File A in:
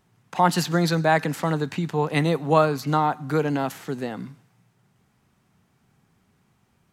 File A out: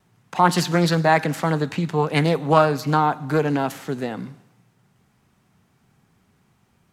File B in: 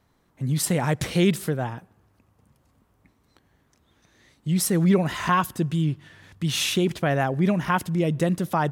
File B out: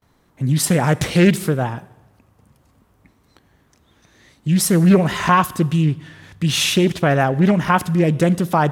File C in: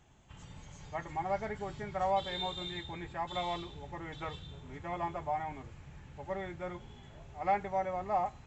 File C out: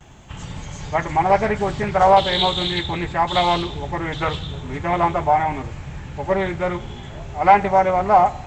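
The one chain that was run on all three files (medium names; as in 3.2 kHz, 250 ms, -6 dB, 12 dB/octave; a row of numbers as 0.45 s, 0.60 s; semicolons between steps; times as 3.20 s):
Schroeder reverb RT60 1 s, combs from 31 ms, DRR 19 dB; gate with hold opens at -57 dBFS; loudspeaker Doppler distortion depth 0.25 ms; peak normalisation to -2 dBFS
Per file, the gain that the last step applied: +2.5 dB, +6.5 dB, +18.0 dB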